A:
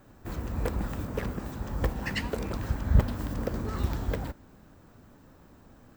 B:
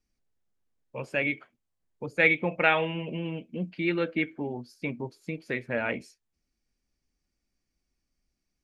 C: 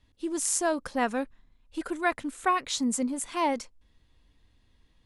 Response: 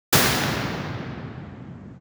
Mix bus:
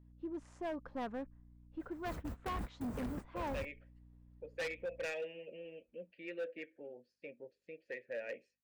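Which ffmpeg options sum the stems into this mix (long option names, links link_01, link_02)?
-filter_complex "[0:a]equalizer=frequency=9500:width=6.8:gain=12.5,adelay=1800,volume=-8.5dB[link_01];[1:a]aeval=exprs='val(0)+0.000631*(sin(2*PI*50*n/s)+sin(2*PI*2*50*n/s)/2+sin(2*PI*3*50*n/s)/3+sin(2*PI*4*50*n/s)/4+sin(2*PI*5*50*n/s)/5)':channel_layout=same,asplit=3[link_02][link_03][link_04];[link_02]bandpass=frequency=530:width_type=q:width=8,volume=0dB[link_05];[link_03]bandpass=frequency=1840:width_type=q:width=8,volume=-6dB[link_06];[link_04]bandpass=frequency=2480:width_type=q:width=8,volume=-9dB[link_07];[link_05][link_06][link_07]amix=inputs=3:normalize=0,asoftclip=type=tanh:threshold=-27dB,adelay=2400,volume=-4dB[link_08];[2:a]lowpass=1300,aeval=exprs='val(0)+0.00355*(sin(2*PI*60*n/s)+sin(2*PI*2*60*n/s)/2+sin(2*PI*3*60*n/s)/3+sin(2*PI*4*60*n/s)/4+sin(2*PI*5*60*n/s)/5)':channel_layout=same,asoftclip=type=tanh:threshold=-20dB,volume=-10dB,asplit=2[link_09][link_10];[link_10]apad=whole_len=342654[link_11];[link_01][link_11]sidechaingate=range=-49dB:threshold=-46dB:ratio=16:detection=peak[link_12];[link_12][link_08][link_09]amix=inputs=3:normalize=0,asoftclip=type=hard:threshold=-35.5dB"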